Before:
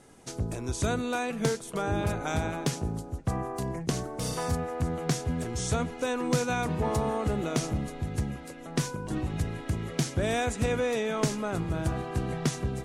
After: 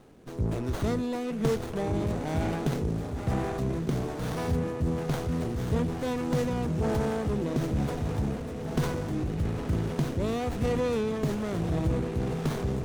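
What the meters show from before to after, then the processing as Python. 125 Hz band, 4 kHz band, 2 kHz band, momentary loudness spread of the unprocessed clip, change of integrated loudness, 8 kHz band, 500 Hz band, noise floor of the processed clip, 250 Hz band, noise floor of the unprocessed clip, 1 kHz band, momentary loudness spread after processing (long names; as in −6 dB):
+2.0 dB, −4.5 dB, −4.5 dB, 6 LU, +1.0 dB, −9.5 dB, +1.0 dB, −36 dBFS, +2.5 dB, −43 dBFS, −3.0 dB, 3 LU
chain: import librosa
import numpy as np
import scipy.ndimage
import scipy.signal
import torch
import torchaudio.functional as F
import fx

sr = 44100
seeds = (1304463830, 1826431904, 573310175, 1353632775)

p1 = x + fx.echo_diffused(x, sr, ms=1348, feedback_pct=57, wet_db=-11.5, dry=0)
p2 = fx.rotary(p1, sr, hz=1.1)
p3 = fx.dynamic_eq(p2, sr, hz=1400.0, q=1.0, threshold_db=-45.0, ratio=4.0, max_db=-4)
p4 = fx.transient(p3, sr, attack_db=-3, sustain_db=5)
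p5 = fx.rider(p4, sr, range_db=3, speed_s=0.5)
p6 = p4 + (p5 * librosa.db_to_amplitude(0.5))
p7 = fx.running_max(p6, sr, window=17)
y = p7 * librosa.db_to_amplitude(-3.0)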